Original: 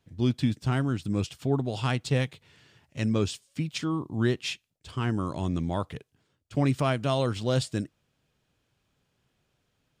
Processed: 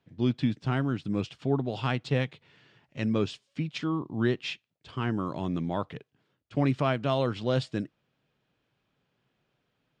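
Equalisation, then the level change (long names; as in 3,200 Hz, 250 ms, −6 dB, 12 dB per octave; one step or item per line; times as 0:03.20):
high-pass filter 51 Hz
low-pass filter 3,700 Hz 12 dB per octave
parametric band 77 Hz −14.5 dB 0.59 octaves
0.0 dB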